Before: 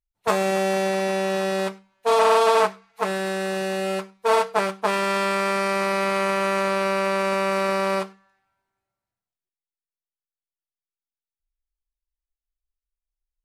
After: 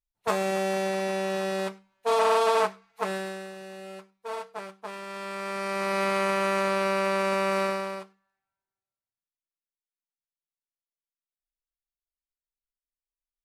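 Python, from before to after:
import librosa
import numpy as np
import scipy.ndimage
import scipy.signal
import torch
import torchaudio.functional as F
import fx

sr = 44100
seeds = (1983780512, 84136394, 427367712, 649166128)

y = fx.gain(x, sr, db=fx.line((3.15, -5.0), (3.55, -16.0), (5.06, -16.0), (6.01, -3.0), (7.63, -3.0), (8.04, -15.0)))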